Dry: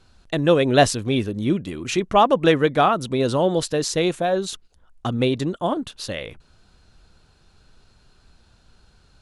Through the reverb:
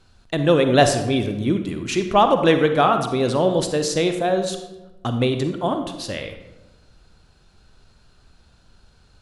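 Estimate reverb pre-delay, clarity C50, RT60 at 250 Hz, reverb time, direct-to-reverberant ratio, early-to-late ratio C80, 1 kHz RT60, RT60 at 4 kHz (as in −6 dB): 38 ms, 8.0 dB, 1.3 s, 1.1 s, 7.0 dB, 10.0 dB, 1.0 s, 0.65 s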